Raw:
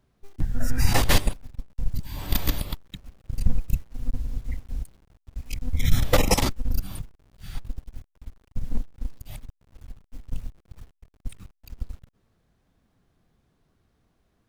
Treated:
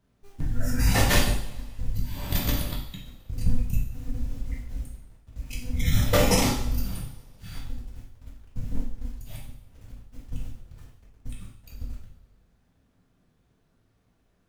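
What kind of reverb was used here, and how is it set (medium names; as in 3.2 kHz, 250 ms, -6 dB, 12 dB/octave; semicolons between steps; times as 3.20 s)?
two-slope reverb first 0.63 s, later 2.1 s, from -21 dB, DRR -3.5 dB; trim -4.5 dB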